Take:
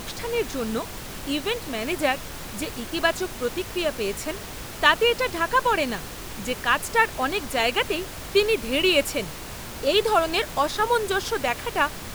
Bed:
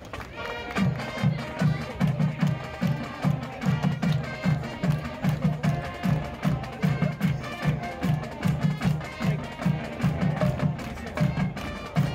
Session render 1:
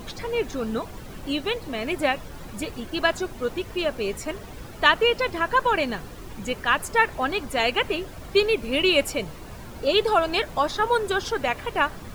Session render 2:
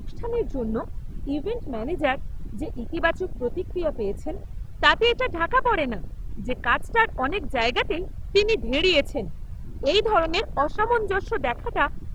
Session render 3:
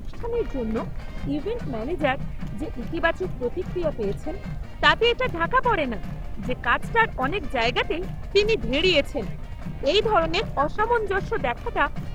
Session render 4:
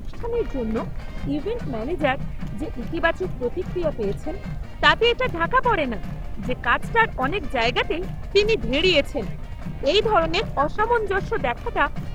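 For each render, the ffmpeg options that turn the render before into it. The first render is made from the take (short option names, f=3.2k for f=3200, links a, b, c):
-af "afftdn=nr=11:nf=-37"
-af "afwtdn=0.0355,lowshelf=f=75:g=10.5"
-filter_complex "[1:a]volume=-11dB[a];[0:a][a]amix=inputs=2:normalize=0"
-af "volume=1.5dB"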